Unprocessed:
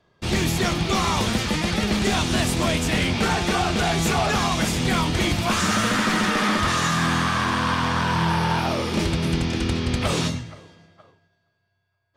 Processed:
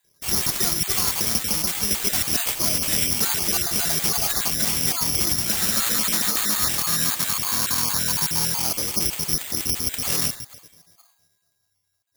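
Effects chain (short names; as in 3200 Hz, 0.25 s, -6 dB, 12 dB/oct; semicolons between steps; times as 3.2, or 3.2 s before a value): random spectral dropouts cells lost 32%; high shelf 7300 Hz +12 dB; careless resampling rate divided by 8×, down none, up zero stuff; gain -9 dB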